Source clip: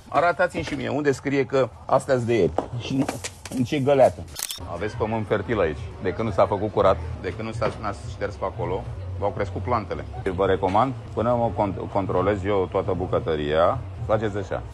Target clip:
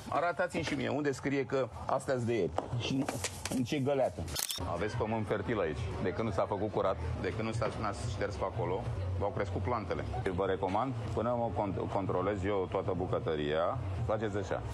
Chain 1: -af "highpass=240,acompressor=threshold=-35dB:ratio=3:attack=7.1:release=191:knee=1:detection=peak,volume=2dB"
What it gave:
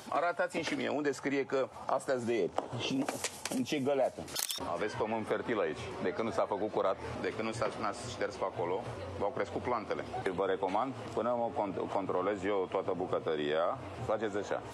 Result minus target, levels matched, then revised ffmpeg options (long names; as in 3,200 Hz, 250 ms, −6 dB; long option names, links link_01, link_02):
125 Hz band −9.0 dB
-af "highpass=77,acompressor=threshold=-35dB:ratio=3:attack=7.1:release=191:knee=1:detection=peak,volume=2dB"